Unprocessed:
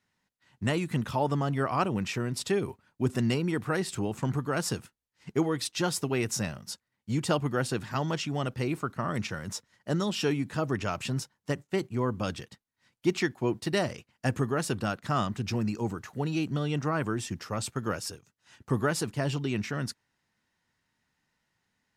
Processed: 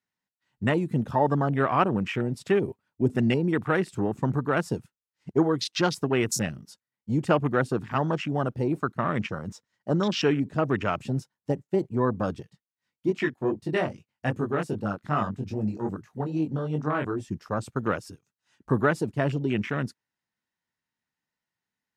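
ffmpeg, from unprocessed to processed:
ffmpeg -i in.wav -filter_complex "[0:a]asettb=1/sr,asplit=3[link_01][link_02][link_03];[link_01]atrim=end=8.984[link_04];[link_02]atrim=start=8.98:end=10.66,asetpts=PTS-STARTPTS,afade=type=in:duration=0.004:curve=qsin,afade=type=out:start_time=1.676:duration=0.004:curve=qsin,equalizer=frequency=11000:width=4.4:gain=-15[link_05];[link_03]atrim=start=10.656[link_06];[link_04][link_05]acrossfade=duration=0.004:curve1=hsin:curve2=qsin[link_07];[link_07][link_06]acrossfade=duration=0.004:curve1=qsin:curve2=hsin,asettb=1/sr,asplit=3[link_08][link_09][link_10];[link_08]atrim=end=12.424[link_11];[link_09]atrim=start=12.42:end=17.28,asetpts=PTS-STARTPTS,afade=type=in:duration=0.004:curve=qsin,afade=type=out:start_time=4.856:duration=0.004:curve=qsin,flanger=delay=19:depth=3.6:speed=2.5[link_12];[link_10]atrim=start=17.276[link_13];[link_11][link_12]acrossfade=duration=0.004:curve1=hsin:curve2=qsin[link_14];[link_14][link_13]acrossfade=duration=0.004:curve1=qsin:curve2=hsin,afwtdn=0.0141,lowshelf=frequency=87:gain=-9.5,volume=5.5dB" out.wav

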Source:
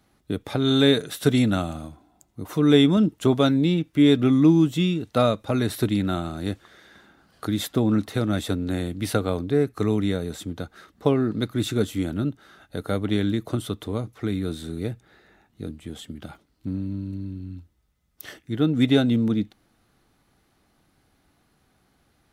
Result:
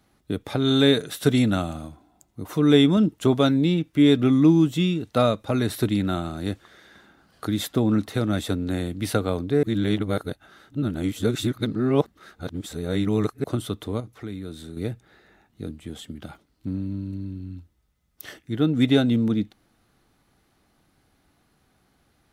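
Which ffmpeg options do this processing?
ffmpeg -i in.wav -filter_complex "[0:a]asettb=1/sr,asplit=3[link_01][link_02][link_03];[link_01]atrim=end=14.004[link_04];[link_02]atrim=start=14:end=14.77,asetpts=PTS-STARTPTS,afade=type=in:duration=0.004:curve=qsin,afade=type=out:start_time=0.766:duration=0.004:curve=qsin,acompressor=threshold=-43dB:ratio=1.5:attack=3.2:release=140:knee=1:detection=peak[link_05];[link_03]atrim=start=14.766[link_06];[link_04][link_05]acrossfade=duration=0.004:curve1=hsin:curve2=qsin[link_07];[link_07][link_06]acrossfade=duration=0.004:curve1=qsin:curve2=hsin,asplit=3[link_08][link_09][link_10];[link_08]atrim=end=9.632[link_11];[link_09]atrim=start=9.628:end=13.442,asetpts=PTS-STARTPTS,areverse[link_12];[link_10]atrim=start=13.438[link_13];[link_11][link_12]acrossfade=duration=0.004:curve1=hsin:curve2=hsin[link_14];[link_14][link_13]acrossfade=duration=0.004:curve1=hsin:curve2=hsin" out.wav

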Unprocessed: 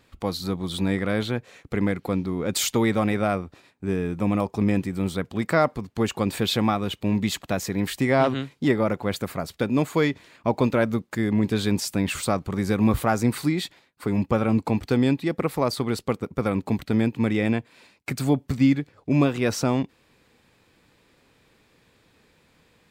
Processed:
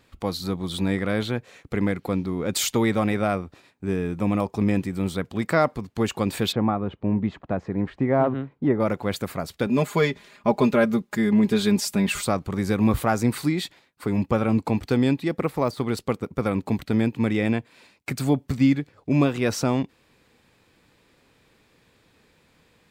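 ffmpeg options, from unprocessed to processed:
ffmpeg -i in.wav -filter_complex "[0:a]asplit=3[link_01][link_02][link_03];[link_01]afade=type=out:start_time=6.51:duration=0.02[link_04];[link_02]lowpass=1200,afade=type=in:start_time=6.51:duration=0.02,afade=type=out:start_time=8.79:duration=0.02[link_05];[link_03]afade=type=in:start_time=8.79:duration=0.02[link_06];[link_04][link_05][link_06]amix=inputs=3:normalize=0,asettb=1/sr,asplit=3[link_07][link_08][link_09];[link_07]atrim=end=9.664[link_10];[link_08]atrim=start=9.66:end=12.23,asetpts=PTS-STARTPTS,afade=type=in:duration=0.004:curve=qsin,afade=type=out:start_time=2.566:duration=0.004:curve=qsin,aecho=1:1:4.9:0.71,atrim=end_sample=113337[link_11];[link_09]atrim=start=12.226[link_12];[link_10][link_11]acrossfade=duration=0.004:curve1=hsin:curve2=qsin[link_13];[link_13][link_12]acrossfade=duration=0.004:curve1=qsin:curve2=hsin,asettb=1/sr,asplit=3[link_14][link_15][link_16];[link_14]atrim=end=15.284[link_17];[link_15]atrim=start=15.28:end=15.97,asetpts=PTS-STARTPTS,afade=type=in:duration=0.004:curve=qsin,afade=type=out:start_time=0.686:duration=0.004:curve=qsin,deesser=0.9[link_18];[link_16]atrim=start=15.966[link_19];[link_17][link_18]acrossfade=duration=0.004:curve1=hsin:curve2=qsin[link_20];[link_20][link_19]acrossfade=duration=0.004:curve1=qsin:curve2=hsin" out.wav

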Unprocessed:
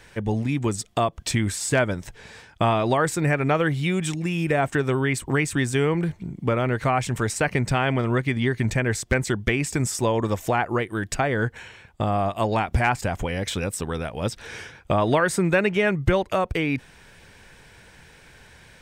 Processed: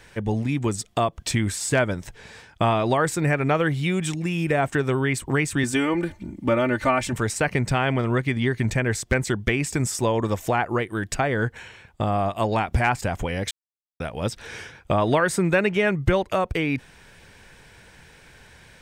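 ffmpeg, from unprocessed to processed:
ffmpeg -i in.wav -filter_complex "[0:a]asettb=1/sr,asplit=3[link_01][link_02][link_03];[link_01]atrim=end=5.634[link_04];[link_02]atrim=start=5.63:end=7.13,asetpts=PTS-STARTPTS,afade=type=in:duration=0.004:curve=qsin,afade=type=out:start_time=1.496:duration=0.004:curve=qsin,aecho=1:1:3.4:0.81,atrim=end_sample=66150[link_05];[link_03]atrim=start=7.126[link_06];[link_04][link_05]acrossfade=duration=0.004:curve1=hsin:curve2=qsin[link_07];[link_07][link_06]acrossfade=duration=0.004:curve1=qsin:curve2=hsin,asplit=3[link_08][link_09][link_10];[link_08]atrim=end=13.51,asetpts=PTS-STARTPTS,afade=type=out:start_time=13.506:duration=0.004:curve=hsin[link_11];[link_09]atrim=start=13.51:end=14,asetpts=PTS-STARTPTS,volume=0[link_12];[link_10]atrim=start=14,asetpts=PTS-STARTPTS,afade=type=in:duration=0.004:curve=hsin[link_13];[link_11][link_12][link_13]concat=n=3:v=0:a=1" out.wav

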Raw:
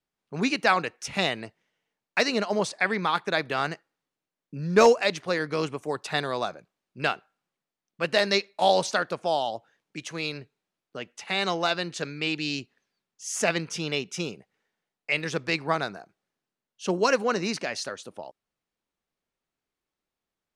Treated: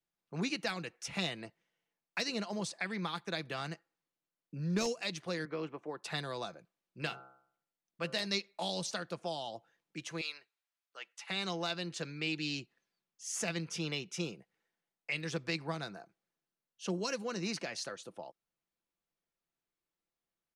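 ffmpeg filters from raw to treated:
ffmpeg -i in.wav -filter_complex "[0:a]asettb=1/sr,asplit=3[link_01][link_02][link_03];[link_01]atrim=end=5.454[link_04];[link_02]atrim=start=5.45:end=6.03,asetpts=PTS-STARTPTS,afade=type=in:duration=0.004:curve=qsin,afade=type=out:start_time=0.576:duration=0.004:curve=qsin,highpass=230,lowpass=2200[link_05];[link_03]atrim=start=6.026[link_06];[link_04][link_05]acrossfade=duration=0.004:curve1=hsin:curve2=qsin[link_07];[link_07][link_06]acrossfade=duration=0.004:curve1=qsin:curve2=hsin,asplit=3[link_08][link_09][link_10];[link_08]afade=type=out:start_time=7.01:duration=0.02[link_11];[link_09]bandreject=frequency=65.35:width_type=h:width=4,bandreject=frequency=130.7:width_type=h:width=4,bandreject=frequency=196.05:width_type=h:width=4,bandreject=frequency=261.4:width_type=h:width=4,bandreject=frequency=326.75:width_type=h:width=4,bandreject=frequency=392.1:width_type=h:width=4,bandreject=frequency=457.45:width_type=h:width=4,bandreject=frequency=522.8:width_type=h:width=4,bandreject=frequency=588.15:width_type=h:width=4,bandreject=frequency=653.5:width_type=h:width=4,bandreject=frequency=718.85:width_type=h:width=4,bandreject=frequency=784.2:width_type=h:width=4,bandreject=frequency=849.55:width_type=h:width=4,bandreject=frequency=914.9:width_type=h:width=4,bandreject=frequency=980.25:width_type=h:width=4,bandreject=frequency=1045.6:width_type=h:width=4,bandreject=frequency=1110.95:width_type=h:width=4,bandreject=frequency=1176.3:width_type=h:width=4,bandreject=frequency=1241.65:width_type=h:width=4,bandreject=frequency=1307:width_type=h:width=4,bandreject=frequency=1372.35:width_type=h:width=4,bandreject=frequency=1437.7:width_type=h:width=4,bandreject=frequency=1503.05:width_type=h:width=4,afade=type=in:start_time=7.01:duration=0.02,afade=type=out:start_time=8.25:duration=0.02[link_12];[link_10]afade=type=in:start_time=8.25:duration=0.02[link_13];[link_11][link_12][link_13]amix=inputs=3:normalize=0,asettb=1/sr,asplit=3[link_14][link_15][link_16];[link_14]atrim=end=10.214[link_17];[link_15]atrim=start=10.21:end=11.29,asetpts=PTS-STARTPTS,afade=type=in:duration=0.004:curve=qsin,afade=type=out:start_time=1.076:duration=0.004:curve=qsin,highpass=1000[link_18];[link_16]atrim=start=11.286[link_19];[link_17][link_18]acrossfade=duration=0.004:curve1=hsin:curve2=qsin[link_20];[link_20][link_19]acrossfade=duration=0.004:curve1=qsin:curve2=hsin,acrossover=split=270|3000[link_21][link_22][link_23];[link_22]acompressor=threshold=-31dB:ratio=6[link_24];[link_21][link_24][link_23]amix=inputs=3:normalize=0,aecho=1:1:5.9:0.34,volume=-7dB" out.wav

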